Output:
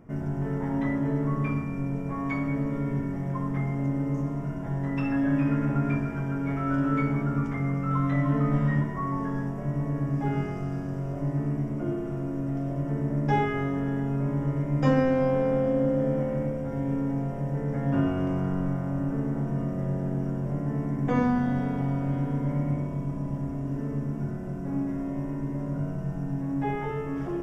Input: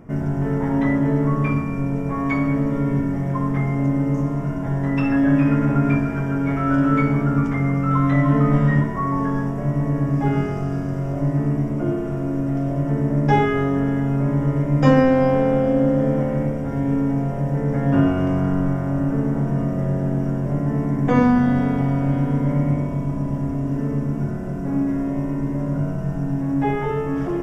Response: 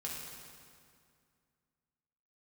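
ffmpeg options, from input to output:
-filter_complex "[0:a]asplit=2[s0][s1];[1:a]atrim=start_sample=2205,asetrate=33957,aresample=44100,adelay=35[s2];[s1][s2]afir=irnorm=-1:irlink=0,volume=0.133[s3];[s0][s3]amix=inputs=2:normalize=0,volume=0.398"

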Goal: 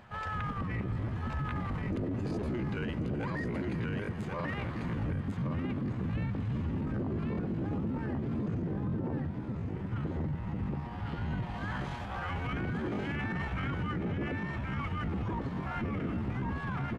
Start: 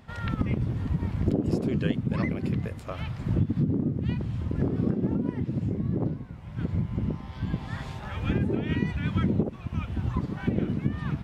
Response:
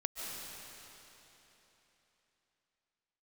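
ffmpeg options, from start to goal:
-filter_complex "[0:a]equalizer=f=1300:w=0.45:g=9,aecho=1:1:724|1448|2172:0.631|0.107|0.0182,asetrate=40517,aresample=44100,asplit=2[s0][s1];[1:a]atrim=start_sample=2205[s2];[s1][s2]afir=irnorm=-1:irlink=0,volume=0.237[s3];[s0][s3]amix=inputs=2:normalize=0,alimiter=limit=0.112:level=0:latency=1:release=11,asplit=2[s4][s5];[s5]asoftclip=type=tanh:threshold=0.0178,volume=0.282[s6];[s4][s6]amix=inputs=2:normalize=0,atempo=0.72,volume=0.398"

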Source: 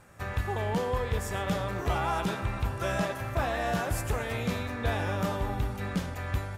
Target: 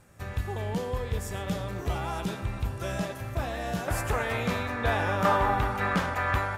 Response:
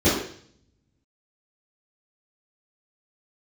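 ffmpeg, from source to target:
-af "asetnsamples=n=441:p=0,asendcmd='3.88 equalizer g 6.5;5.25 equalizer g 14',equalizer=f=1200:t=o:w=2.4:g=-5.5"

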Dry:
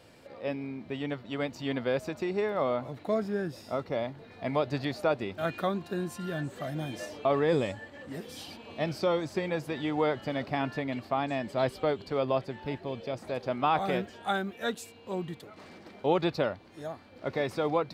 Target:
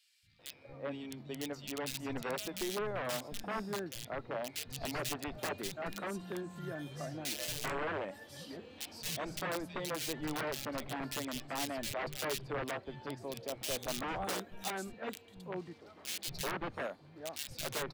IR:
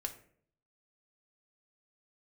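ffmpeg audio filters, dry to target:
-filter_complex "[0:a]aeval=exprs='(mod(14.1*val(0)+1,2)-1)/14.1':c=same,acrossover=split=170|2400[s0][s1][s2];[s0]adelay=230[s3];[s1]adelay=390[s4];[s3][s4][s2]amix=inputs=3:normalize=0,volume=0.501"

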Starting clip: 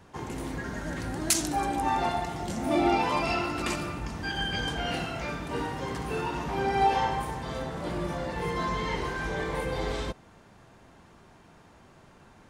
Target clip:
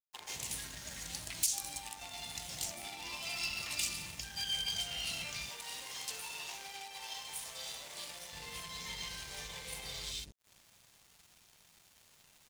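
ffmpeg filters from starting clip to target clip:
-filter_complex "[0:a]equalizer=f=320:w=1.4:g=-9,acrossover=split=370|2200[s0][s1][s2];[s2]adelay=130[s3];[s0]adelay=200[s4];[s4][s1][s3]amix=inputs=3:normalize=0,acompressor=threshold=0.00794:ratio=10,aeval=exprs='0.0119*(abs(mod(val(0)/0.0119+3,4)-2)-1)':c=same,aexciter=amount=4.8:drive=7.8:freq=2100,aeval=exprs='sgn(val(0))*max(abs(val(0))-0.00422,0)':c=same,asettb=1/sr,asplit=3[s5][s6][s7];[s5]atrim=end=5.494[s8];[s6]atrim=start=5.49:end=8.33,asetpts=PTS-STARTPTS,afade=t=in:d=0.004:c=qsin,afade=t=out:st=2.836:d=0.004:c=qsin,bass=f=250:g=-14,treble=f=4000:g=1[s9];[s7]atrim=start=8.326[s10];[s8][s9]acrossfade=d=0.004:c1=hsin:c2=qsin[s11];[s11][s10]acrossfade=d=0.004:c1=qsin:c2=hsin,volume=0.794"

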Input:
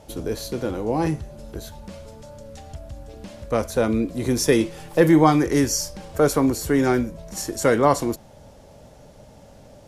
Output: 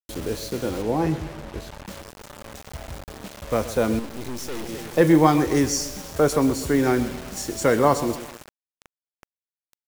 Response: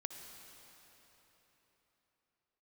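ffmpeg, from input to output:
-filter_complex "[0:a]aecho=1:1:129|258|387|516|645:0.2|0.0978|0.0479|0.0235|0.0115,asettb=1/sr,asplit=3[s0][s1][s2];[s0]atrim=end=3.994[s3];[s1]atrim=start=3.99:end=4.69,asetpts=PTS-STARTPTS,afade=t=in:d=0.004:c=qsin,afade=t=out:st=0.696:d=0.004:c=qsin,aeval=exprs='(tanh(31.6*val(0)+0.8)-tanh(0.8))/31.6':c=same[s4];[s2]atrim=start=4.686[s5];[s3][s4]acrossfade=d=0.004:c1=hsin:c2=qsin[s6];[s6][s5]acrossfade=d=0.004:c1=qsin:c2=hsin,lowpass=10000,acrusher=bits=5:mix=0:aa=0.000001,asettb=1/sr,asplit=3[s7][s8][s9];[s7]atrim=end=0.824[s10];[s8]atrim=start=0.82:end=1.87,asetpts=PTS-STARTPTS,afade=t=in:d=0.004:c=qsin,afade=t=out:st=1.046:d=0.004:c=qsin,aemphasis=mode=reproduction:type=cd[s11];[s9]atrim=start=1.866[s12];[s10][s11]acrossfade=d=0.004:c1=hsin:c2=qsin[s13];[s13][s12]acrossfade=d=0.004:c1=qsin:c2=hsin,volume=0.891"

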